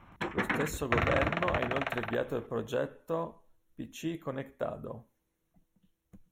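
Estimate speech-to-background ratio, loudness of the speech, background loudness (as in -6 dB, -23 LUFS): -3.0 dB, -36.0 LUFS, -33.0 LUFS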